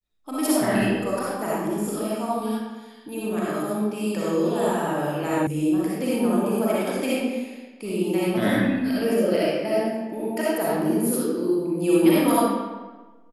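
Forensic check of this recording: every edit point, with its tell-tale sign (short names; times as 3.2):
5.47 sound cut off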